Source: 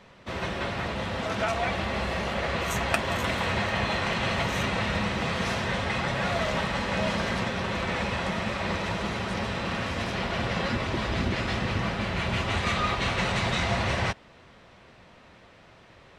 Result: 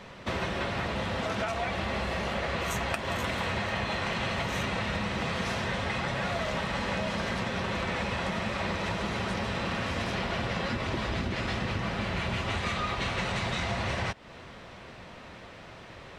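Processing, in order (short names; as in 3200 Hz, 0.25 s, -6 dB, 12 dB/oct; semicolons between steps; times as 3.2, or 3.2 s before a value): compressor, threshold -35 dBFS, peak gain reduction 15.5 dB; gain +6.5 dB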